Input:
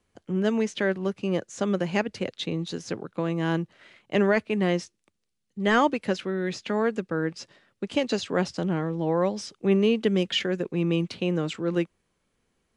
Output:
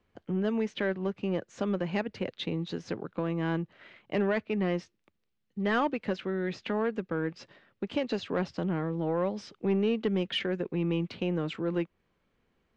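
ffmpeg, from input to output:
ffmpeg -i in.wav -filter_complex "[0:a]lowpass=3300,asplit=2[link_01][link_02];[link_02]acompressor=threshold=-32dB:ratio=6,volume=2dB[link_03];[link_01][link_03]amix=inputs=2:normalize=0,asoftclip=type=tanh:threshold=-11.5dB,volume=-6.5dB" out.wav

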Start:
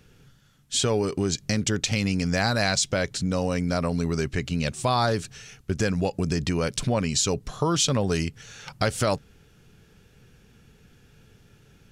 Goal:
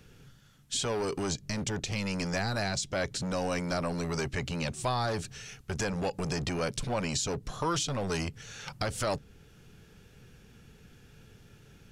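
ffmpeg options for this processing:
ffmpeg -i in.wav -filter_complex "[0:a]acrossover=split=630[link_01][link_02];[link_01]volume=31.5dB,asoftclip=hard,volume=-31.5dB[link_03];[link_02]alimiter=limit=-21.5dB:level=0:latency=1:release=472[link_04];[link_03][link_04]amix=inputs=2:normalize=0" out.wav

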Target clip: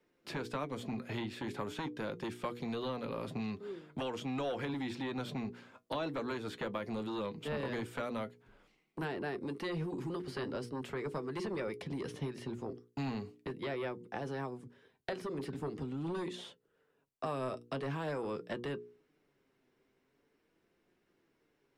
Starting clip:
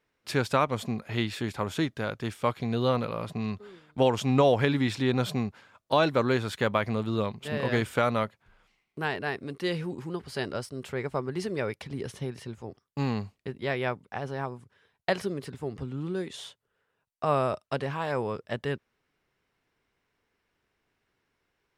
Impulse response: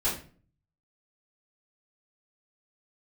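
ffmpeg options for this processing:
-filter_complex "[0:a]bandreject=frequency=60:width_type=h:width=6,bandreject=frequency=120:width_type=h:width=6,bandreject=frequency=180:width_type=h:width=6,bandreject=frequency=240:width_type=h:width=6,bandreject=frequency=300:width_type=h:width=6,bandreject=frequency=360:width_type=h:width=6,bandreject=frequency=420:width_type=h:width=6,bandreject=frequency=480:width_type=h:width=6,acrossover=split=1200|3800[link_01][link_02][link_03];[link_01]acompressor=threshold=-39dB:ratio=4[link_04];[link_02]acompressor=threshold=-44dB:ratio=4[link_05];[link_03]acompressor=threshold=-55dB:ratio=4[link_06];[link_04][link_05][link_06]amix=inputs=3:normalize=0,flanger=delay=5.6:depth=2.2:regen=62:speed=0.43:shape=sinusoidal,acrossover=split=230|410|2600[link_07][link_08][link_09][link_10];[link_08]aeval=exprs='0.0119*sin(PI/2*3.55*val(0)/0.0119)':channel_layout=same[link_11];[link_07][link_11][link_09][link_10]amix=inputs=4:normalize=0,volume=1.5dB"

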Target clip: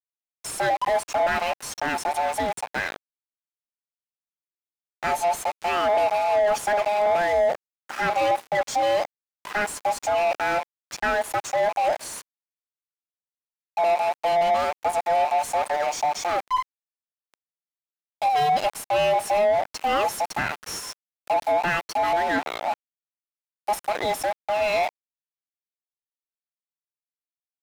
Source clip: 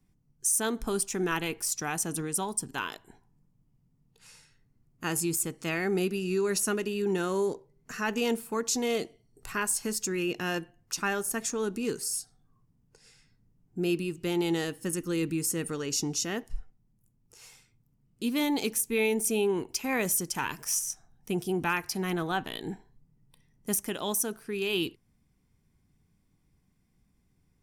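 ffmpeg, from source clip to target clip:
ffmpeg -i in.wav -filter_complex "[0:a]afftfilt=real='real(if(between(b,1,1008),(2*floor((b-1)/48)+1)*48-b,b),0)':imag='imag(if(between(b,1,1008),(2*floor((b-1)/48)+1)*48-b,b),0)*if(between(b,1,1008),-1,1)':win_size=2048:overlap=0.75,aeval=exprs='val(0)*gte(abs(val(0)),0.015)':channel_layout=same,asplit=2[link_01][link_02];[link_02]highpass=frequency=720:poles=1,volume=21dB,asoftclip=type=tanh:threshold=-13.5dB[link_03];[link_01][link_03]amix=inputs=2:normalize=0,lowpass=frequency=1200:poles=1,volume=-6dB,volume=2dB" out.wav

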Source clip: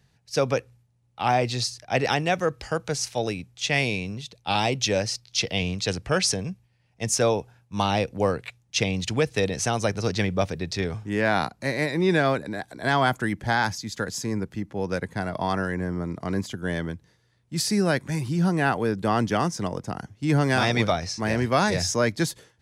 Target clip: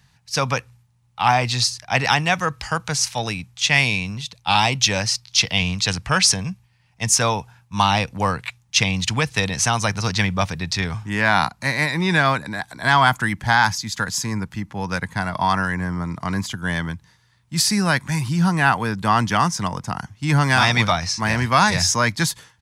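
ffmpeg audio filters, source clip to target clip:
ffmpeg -i in.wav -af "acontrast=31,firequalizer=gain_entry='entry(160,0);entry(380,-11);entry(560,-8);entry(950,6);entry(1400,3)':delay=0.05:min_phase=1" out.wav

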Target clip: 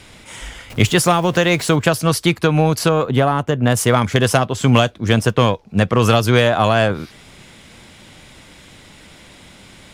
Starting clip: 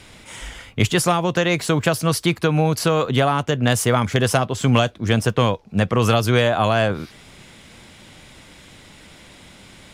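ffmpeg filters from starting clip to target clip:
ffmpeg -i in.wav -filter_complex "[0:a]asettb=1/sr,asplit=3[link_01][link_02][link_03];[link_01]atrim=end=0.704[link_04];[link_02]atrim=start=0.7:end=1.76,asetpts=PTS-STARTPTS,afade=type=in:duration=0.004:curve=qsin,afade=type=out:start_time=1.056:duration=0.004:curve=qsin,aeval=exprs='val(0)+0.5*0.0237*sgn(val(0))':channel_layout=same[link_05];[link_03]atrim=start=1.756[link_06];[link_04][link_05]acrossfade=duration=0.004:curve1=hsin:curve2=qsin[link_07];[link_07][link_06]acrossfade=duration=0.004:curve1=qsin:curve2=hsin,asettb=1/sr,asplit=3[link_08][link_09][link_10];[link_08]atrim=end=2.894[link_11];[link_09]atrim=start=2.89:end=3.77,asetpts=PTS-STARTPTS,afade=type=in:duration=0.004:curve=qsin,afade=type=out:start_time=0.876:duration=0.004:curve=qsin,equalizer=frequency=4900:width_type=o:width=2.6:gain=-8[link_12];[link_10]atrim=start=3.766[link_13];[link_11][link_12]acrossfade=duration=0.004:curve1=hsin:curve2=qsin[link_14];[link_14][link_13]acrossfade=duration=0.004:curve1=qsin:curve2=hsin,aeval=exprs='0.596*(cos(1*acos(clip(val(0)/0.596,-1,1)))-cos(1*PI/2))+0.015*(cos(7*acos(clip(val(0)/0.596,-1,1)))-cos(7*PI/2))':channel_layout=same,volume=3.5dB" out.wav

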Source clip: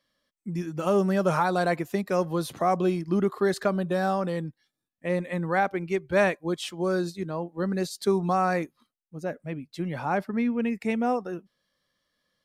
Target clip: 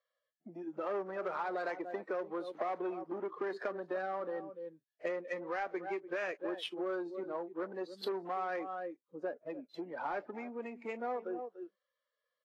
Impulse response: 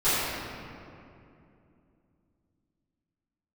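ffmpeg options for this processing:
-filter_complex "[0:a]asplit=2[link_01][link_02];[link_02]aecho=0:1:291:0.188[link_03];[link_01][link_03]amix=inputs=2:normalize=0,afftdn=noise_reduction=15:noise_floor=-33,acrossover=split=1200[link_04][link_05];[link_04]asoftclip=type=tanh:threshold=-23.5dB[link_06];[link_05]highshelf=frequency=8700:gain=-10[link_07];[link_06][link_07]amix=inputs=2:normalize=0,alimiter=limit=-21.5dB:level=0:latency=1:release=99,acompressor=threshold=-42dB:ratio=8,highpass=frequency=330:width=0.5412,highpass=frequency=330:width=1.3066,aemphasis=mode=production:type=75kf,adynamicsmooth=sensitivity=5.5:basefreq=1700,volume=8.5dB" -ar 44100 -c:a libvorbis -b:a 32k

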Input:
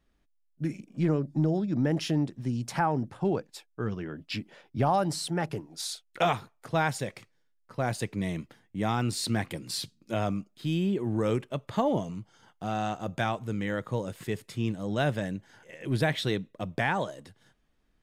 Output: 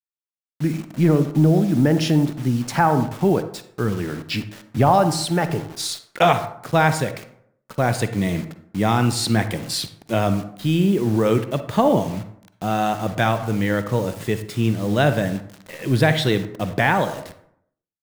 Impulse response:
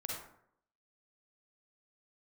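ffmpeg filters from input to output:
-filter_complex "[0:a]acrusher=bits=7:mix=0:aa=0.000001,asplit=2[link_01][link_02];[1:a]atrim=start_sample=2205,highshelf=frequency=4900:gain=-8.5[link_03];[link_02][link_03]afir=irnorm=-1:irlink=0,volume=-6dB[link_04];[link_01][link_04]amix=inputs=2:normalize=0,volume=7dB"

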